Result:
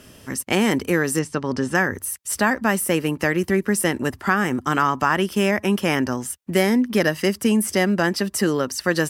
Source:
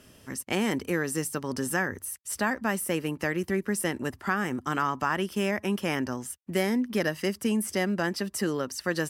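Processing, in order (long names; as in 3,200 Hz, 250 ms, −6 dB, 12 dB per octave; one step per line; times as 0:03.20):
0:01.19–0:01.75: high-frequency loss of the air 110 metres
level +8 dB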